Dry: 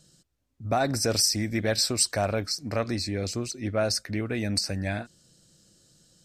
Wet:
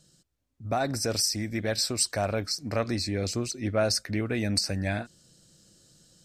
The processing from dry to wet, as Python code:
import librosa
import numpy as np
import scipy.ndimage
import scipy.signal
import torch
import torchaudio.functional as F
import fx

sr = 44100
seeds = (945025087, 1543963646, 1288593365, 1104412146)

y = fx.rider(x, sr, range_db=10, speed_s=2.0)
y = F.gain(torch.from_numpy(y), -1.5).numpy()